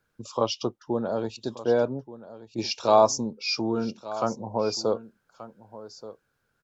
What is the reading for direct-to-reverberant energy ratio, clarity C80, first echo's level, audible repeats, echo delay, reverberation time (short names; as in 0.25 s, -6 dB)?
none, none, -16.0 dB, 1, 1.179 s, none